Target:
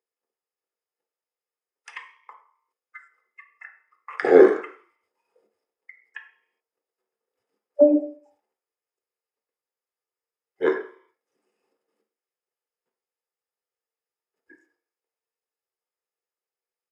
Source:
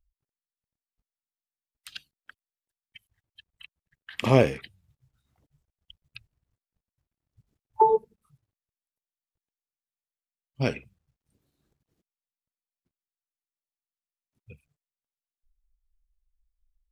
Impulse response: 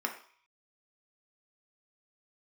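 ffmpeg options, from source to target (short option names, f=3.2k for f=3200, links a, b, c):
-filter_complex "[0:a]highpass=f=680:t=q:w=4.9,asetrate=29433,aresample=44100,atempo=1.49831[a];[1:a]atrim=start_sample=2205,asetrate=41895,aresample=44100[b];[a][b]afir=irnorm=-1:irlink=0,volume=-1.5dB"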